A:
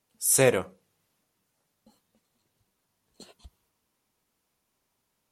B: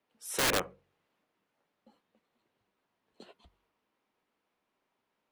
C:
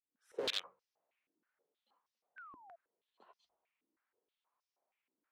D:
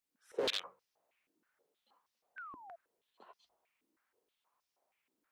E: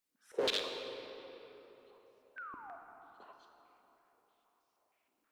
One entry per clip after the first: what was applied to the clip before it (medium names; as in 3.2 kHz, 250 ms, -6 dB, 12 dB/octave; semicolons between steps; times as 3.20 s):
three-band isolator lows -13 dB, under 210 Hz, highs -19 dB, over 3.5 kHz; integer overflow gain 21.5 dB; de-hum 46.02 Hz, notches 3
fade-in on the opening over 0.51 s; painted sound fall, 2.36–2.76 s, 650–1600 Hz -41 dBFS; step-sequenced band-pass 6.3 Hz 300–5400 Hz; trim +2 dB
peak limiter -29.5 dBFS, peak gain reduction 9 dB; trim +5.5 dB
reverberation RT60 3.8 s, pre-delay 29 ms, DRR 4 dB; trim +1.5 dB